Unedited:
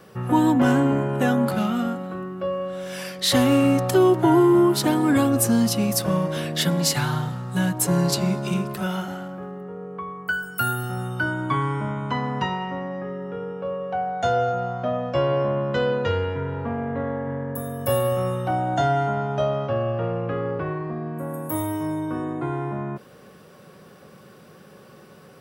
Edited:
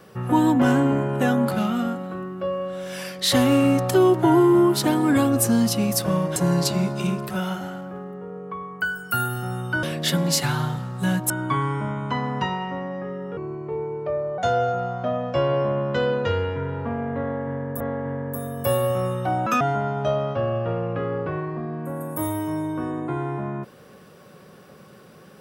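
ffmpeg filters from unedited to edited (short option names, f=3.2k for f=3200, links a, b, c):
-filter_complex "[0:a]asplit=9[a][b][c][d][e][f][g][h][i];[a]atrim=end=6.362[j];[b]atrim=start=7.828:end=11.302[k];[c]atrim=start=6.358:end=7.832[l];[d]atrim=start=11.298:end=13.374[m];[e]atrim=start=13.37:end=14.18,asetpts=PTS-STARTPTS,asetrate=35280,aresample=44100,atrim=end_sample=44651,asetpts=PTS-STARTPTS[n];[f]atrim=start=14.176:end=17.602[o];[g]atrim=start=17.018:end=18.684[p];[h]atrim=start=18.68:end=18.94,asetpts=PTS-STARTPTS,asetrate=78498,aresample=44100[q];[i]atrim=start=18.936[r];[j][k]acrossfade=d=0.004:c1=hsin:c2=hsin[s];[s][l]acrossfade=d=0.004:c1=hsin:c2=hsin[t];[t][m]acrossfade=d=0.004:c1=hsin:c2=hsin[u];[u][n]acrossfade=d=0.004:c1=hsin:c2=hsin[v];[v][o]acrossfade=d=0.004:c1=hsin:c2=hsin[w];[w][p]acrossfade=d=0.004:c1=hsin:c2=hsin[x];[x][q]acrossfade=d=0.004:c1=hsin:c2=hsin[y];[y][r]acrossfade=d=0.004:c1=hsin:c2=hsin"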